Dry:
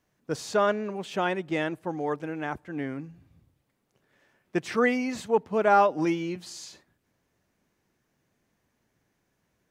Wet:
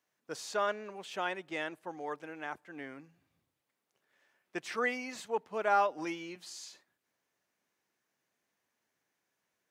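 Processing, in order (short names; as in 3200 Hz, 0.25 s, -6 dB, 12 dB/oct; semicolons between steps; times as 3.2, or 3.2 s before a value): HPF 810 Hz 6 dB/oct; gain -4.5 dB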